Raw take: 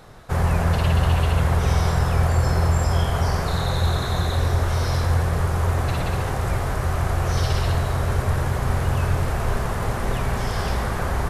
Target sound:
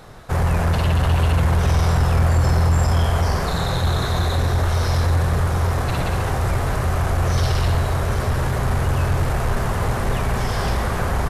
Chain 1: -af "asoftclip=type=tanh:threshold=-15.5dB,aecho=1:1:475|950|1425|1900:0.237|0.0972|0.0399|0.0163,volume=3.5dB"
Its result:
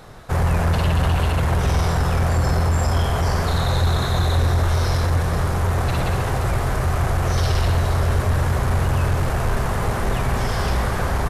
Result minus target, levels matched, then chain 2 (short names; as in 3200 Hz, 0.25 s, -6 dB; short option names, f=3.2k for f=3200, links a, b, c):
echo 0.317 s early
-af "asoftclip=type=tanh:threshold=-15.5dB,aecho=1:1:792|1584|2376|3168:0.237|0.0972|0.0399|0.0163,volume=3.5dB"